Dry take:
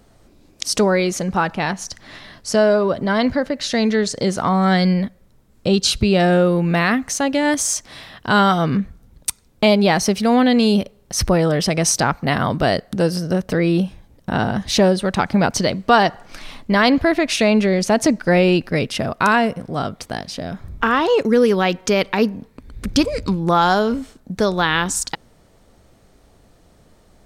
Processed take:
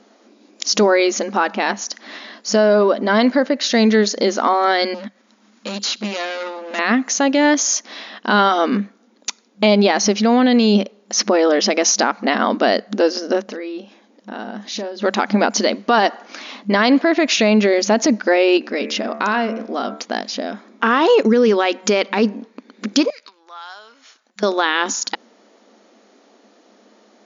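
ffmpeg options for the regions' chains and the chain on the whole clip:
ffmpeg -i in.wav -filter_complex "[0:a]asettb=1/sr,asplit=3[link_01][link_02][link_03];[link_01]atrim=end=4.944[link_04];[link_02]atrim=start=4.94:end=6.79,asetpts=PTS-STARTPTS,afade=type=in:duration=0.004:curve=qsin,afade=type=out:start_time=1.846:duration=0.004:curve=qsin,equalizer=frequency=430:width=1.1:gain=-12,acompressor=mode=upward:threshold=-37dB:ratio=2.5:attack=3.2:release=140:knee=2.83:detection=peak,volume=23.5dB,asoftclip=hard,volume=-23.5dB[link_05];[link_03]atrim=start=6.786[link_06];[link_04][link_05]acrossfade=duration=0.004:curve1=hsin:curve2=qsin[link_07];[link_07][link_06]acrossfade=duration=0.004:curve1=qsin:curve2=hsin,asettb=1/sr,asplit=3[link_08][link_09][link_10];[link_08]atrim=end=13.474[link_11];[link_09]atrim=start=13.47:end=15.02,asetpts=PTS-STARTPTS,afade=type=in:duration=0.004:curve=qsin,afade=type=out:start_time=1.546:duration=0.004:curve=qsin,acompressor=threshold=-35dB:ratio=2.5:attack=3.2:release=140:knee=1:detection=peak,asplit=2[link_12][link_13];[link_13]adelay=39,volume=-14dB[link_14];[link_12][link_14]amix=inputs=2:normalize=0,atrim=end_sample=68355[link_15];[link_10]atrim=start=15.016[link_16];[link_11][link_15]acrossfade=duration=0.004:curve1=hsin:curve2=qsin[link_17];[link_17][link_16]acrossfade=duration=0.004:curve1=qsin:curve2=hsin,asettb=1/sr,asplit=3[link_18][link_19][link_20];[link_18]atrim=end=18.574[link_21];[link_19]atrim=start=18.57:end=20,asetpts=PTS-STARTPTS,afade=type=in:duration=0.004:curve=qsin,afade=type=out:start_time=1.426:duration=0.004:curve=qsin,bandreject=frequency=74.5:width_type=h:width=4,bandreject=frequency=149:width_type=h:width=4,bandreject=frequency=223.5:width_type=h:width=4,bandreject=frequency=298:width_type=h:width=4,bandreject=frequency=372.5:width_type=h:width=4,bandreject=frequency=447:width_type=h:width=4,bandreject=frequency=521.5:width_type=h:width=4,bandreject=frequency=596:width_type=h:width=4,bandreject=frequency=670.5:width_type=h:width=4,bandreject=frequency=745:width_type=h:width=4,bandreject=frequency=819.5:width_type=h:width=4,bandreject=frequency=894:width_type=h:width=4,bandreject=frequency=968.5:width_type=h:width=4,bandreject=frequency=1043:width_type=h:width=4,bandreject=frequency=1117.5:width_type=h:width=4,bandreject=frequency=1192:width_type=h:width=4,bandreject=frequency=1266.5:width_type=h:width=4,bandreject=frequency=1341:width_type=h:width=4,bandreject=frequency=1415.5:width_type=h:width=4,bandreject=frequency=1490:width_type=h:width=4,bandreject=frequency=1564.5:width_type=h:width=4,bandreject=frequency=1639:width_type=h:width=4,bandreject=frequency=1713.5:width_type=h:width=4,bandreject=frequency=1788:width_type=h:width=4,bandreject=frequency=1862.5:width_type=h:width=4,bandreject=frequency=1937:width_type=h:width=4,bandreject=frequency=2011.5:width_type=h:width=4,bandreject=frequency=2086:width_type=h:width=4,bandreject=frequency=2160.5:width_type=h:width=4,bandreject=frequency=2235:width_type=h:width=4,bandreject=frequency=2309.5:width_type=h:width=4,bandreject=frequency=2384:width_type=h:width=4,bandreject=frequency=2458.5:width_type=h:width=4,bandreject=frequency=2533:width_type=h:width=4,bandreject=frequency=2607.5:width_type=h:width=4,acompressor=threshold=-22dB:ratio=2.5:attack=3.2:release=140:knee=1:detection=peak[link_22];[link_20]atrim=start=19.996[link_23];[link_21][link_22]acrossfade=duration=0.004:curve1=hsin:curve2=qsin[link_24];[link_24][link_23]acrossfade=duration=0.004:curve1=qsin:curve2=hsin,asettb=1/sr,asplit=3[link_25][link_26][link_27];[link_25]atrim=end=23.104[link_28];[link_26]atrim=start=23.1:end=24.43,asetpts=PTS-STARTPTS,afade=type=in:duration=0.004:curve=qsin,afade=type=out:start_time=1.326:duration=0.004:curve=qsin,acompressor=threshold=-32dB:ratio=5:attack=3.2:release=140:knee=1:detection=peak,highpass=1300[link_29];[link_27]atrim=start=24.426[link_30];[link_28][link_29]acrossfade=duration=0.004:curve1=hsin:curve2=qsin[link_31];[link_31][link_30]acrossfade=duration=0.004:curve1=qsin:curve2=hsin,afftfilt=real='re*between(b*sr/4096,200,7100)':imag='im*between(b*sr/4096,200,7100)':win_size=4096:overlap=0.75,alimiter=level_in=9dB:limit=-1dB:release=50:level=0:latency=1,volume=-4.5dB" out.wav

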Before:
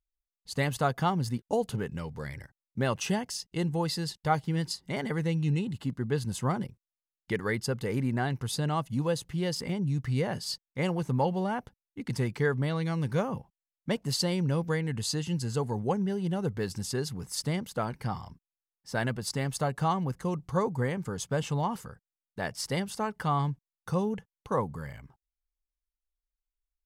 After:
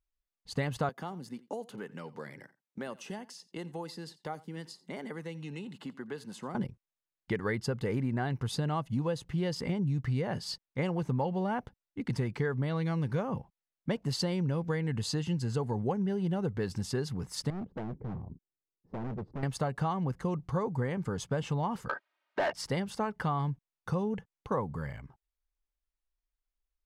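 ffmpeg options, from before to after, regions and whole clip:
ffmpeg -i in.wav -filter_complex "[0:a]asettb=1/sr,asplit=3[link_01][link_02][link_03];[link_01]atrim=end=0.894[link_04];[link_02]atrim=start=0.89:end=6.55,asetpts=PTS-STARTPTS,afade=type=in:duration=0.004:curve=qsin,afade=type=out:start_time=5.656:duration=0.004:curve=qsin,highpass=frequency=190:width=0.5412,highpass=frequency=190:width=1.3066,acrossover=split=650|7100[link_05][link_06][link_07];[link_05]acompressor=threshold=-43dB:ratio=4[link_08];[link_06]acompressor=threshold=-47dB:ratio=4[link_09];[link_07]acompressor=threshold=-50dB:ratio=4[link_10];[link_08][link_09][link_10]amix=inputs=3:normalize=0,aecho=1:1:87:0.0944,atrim=end_sample=249606[link_11];[link_03]atrim=start=6.546[link_12];[link_04][link_11]acrossfade=duration=0.004:curve1=hsin:curve2=qsin[link_13];[link_13][link_12]acrossfade=duration=0.004:curve1=qsin:curve2=hsin,asettb=1/sr,asplit=3[link_14][link_15][link_16];[link_14]atrim=end=17.504[link_17];[link_15]atrim=start=17.5:end=19.43,asetpts=PTS-STARTPTS,afade=type=in:duration=0.004:curve=qsin,afade=type=out:start_time=1.926:duration=0.004:curve=qsin,lowpass=frequency=380:width_type=q:width=1.7,asoftclip=type=hard:threshold=-36.5dB[link_18];[link_16]atrim=start=19.426[link_19];[link_17][link_18]acrossfade=duration=0.004:curve1=hsin:curve2=qsin[link_20];[link_20][link_19]acrossfade=duration=0.004:curve1=qsin:curve2=hsin,asettb=1/sr,asplit=3[link_21][link_22][link_23];[link_21]atrim=end=21.894[link_24];[link_22]atrim=start=21.89:end=22.53,asetpts=PTS-STARTPTS,afade=type=in:duration=0.004:curve=qsin,afade=type=out:start_time=0.636:duration=0.004:curve=qsin,highpass=490,lowpass=3700,aecho=1:1:3.2:0.57,atrim=end_sample=28224,asplit=2[link_25][link_26];[link_26]highpass=frequency=720:poles=1,volume=31dB,asoftclip=type=tanh:threshold=-19dB[link_27];[link_25][link_27]amix=inputs=2:normalize=0,lowpass=frequency=2000:poles=1,volume=-6dB[link_28];[link_23]atrim=start=22.526[link_29];[link_24][link_28]acrossfade=duration=0.004:curve1=hsin:curve2=qsin[link_30];[link_30][link_29]acrossfade=duration=0.004:curve1=qsin:curve2=hsin,lowpass=frequency=2900:poles=1,acompressor=threshold=-29dB:ratio=6,volume=2dB" out.wav

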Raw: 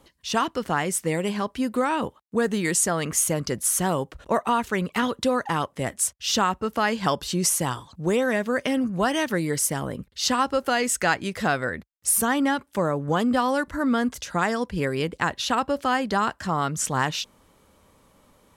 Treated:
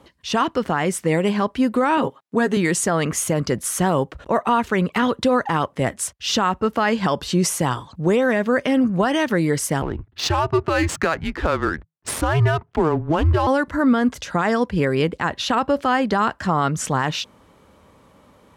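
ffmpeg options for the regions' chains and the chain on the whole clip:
ffmpeg -i in.wav -filter_complex "[0:a]asettb=1/sr,asplit=3[link_01][link_02][link_03];[link_01]atrim=end=1.974[link_04];[link_02]atrim=start=1.97:end=2.57,asetpts=PTS-STARTPTS,afade=type=in:duration=0.004:curve=qsin,afade=type=out:start_time=0.596:duration=0.004:curve=qsin,highpass=130,aecho=1:1:7.4:0.56,atrim=end_sample=26460[link_05];[link_03]atrim=start=2.566[link_06];[link_04][link_05]acrossfade=duration=0.004:curve1=hsin:curve2=qsin[link_07];[link_07][link_06]acrossfade=duration=0.004:curve1=qsin:curve2=hsin,asettb=1/sr,asplit=3[link_08][link_09][link_10];[link_08]atrim=end=9.824[link_11];[link_09]atrim=start=9.82:end=13.47,asetpts=PTS-STARTPTS,afade=type=in:duration=0.004:curve=qsin,afade=type=out:start_time=3.646:duration=0.004:curve=qsin,adynamicsmooth=sensitivity=6.5:basefreq=1400,afreqshift=-160[link_12];[link_10]atrim=start=13.466[link_13];[link_11][link_12]acrossfade=duration=0.004:curve1=hsin:curve2=qsin[link_14];[link_14][link_13]acrossfade=duration=0.004:curve1=qsin:curve2=hsin,highpass=54,highshelf=frequency=5100:gain=-12,alimiter=level_in=15.5dB:limit=-1dB:release=50:level=0:latency=1,volume=-8.5dB" out.wav

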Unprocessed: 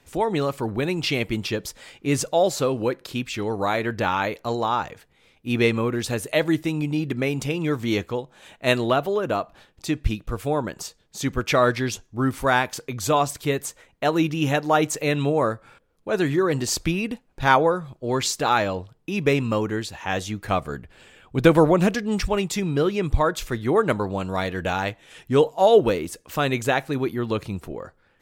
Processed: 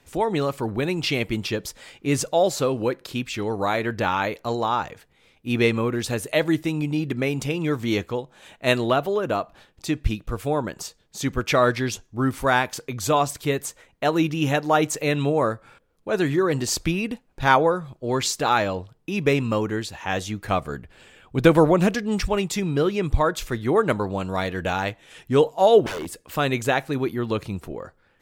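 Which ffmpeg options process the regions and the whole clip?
ffmpeg -i in.wav -filter_complex "[0:a]asettb=1/sr,asplit=3[link_01][link_02][link_03];[link_01]atrim=end=25.864[link_04];[link_02]atrim=start=25.86:end=26.37,asetpts=PTS-STARTPTS,afade=type=in:duration=0.004:curve=qsin,afade=type=out:start_time=0.506:duration=0.004:curve=qsin,equalizer=frequency=6000:width=5.4:gain=-6,aeval=exprs='0.0531*(abs(mod(val(0)/0.0531+3,4)-2)-1)':channel_layout=same[link_05];[link_03]atrim=start=26.366[link_06];[link_04][link_05]acrossfade=duration=0.004:curve1=hsin:curve2=qsin[link_07];[link_07][link_06]acrossfade=duration=0.004:curve1=qsin:curve2=hsin" out.wav

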